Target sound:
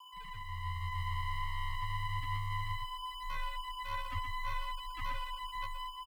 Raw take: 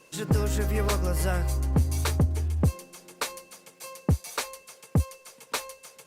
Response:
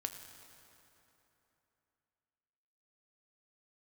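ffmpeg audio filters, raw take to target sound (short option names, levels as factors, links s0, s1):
-filter_complex "[0:a]aeval=exprs='0.0668*(abs(mod(val(0)/0.0668+3,4)-2)-1)':c=same,aeval=exprs='(tanh(398*val(0)+0.75)-tanh(0.75))/398':c=same,asettb=1/sr,asplit=3[s0][s1][s2];[s0]atrim=end=3.114[s3];[s1]atrim=start=3.11:end=5.65,asetpts=PTS-STARTPTS,afade=t=in:d=0.004:c=qsin,afade=t=out:st=2.536:d=0.004:c=qsin,aecho=1:1:3.7:0.7,atrim=end_sample=112014[s4];[s2]atrim=start=5.646[s5];[s3][s4]acrossfade=d=0.004:c1=hsin:c2=qsin[s6];[s6][s5]acrossfade=d=0.004:c1=qsin:c2=hsin,aeval=exprs='val(0)+0.00631*sin(2*PI*990*n/s)':c=same,afftfilt=real='re*gte(hypot(re,im),0.02)':imag='im*gte(hypot(re,im),0.02)':win_size=1024:overlap=0.75,aecho=1:1:123:0.473,aeval=exprs='sgn(val(0))*max(abs(val(0))-0.00355,0)':c=same,dynaudnorm=f=530:g=3:m=2.11,afreqshift=22,firequalizer=gain_entry='entry(140,0);entry(320,-20);entry(550,-14);entry(780,-13);entry(1200,-2);entry(6200,-8);entry(13000,3)':delay=0.05:min_phase=1,flanger=delay=6.2:depth=5:regen=19:speed=0.61:shape=sinusoidal,volume=5.31"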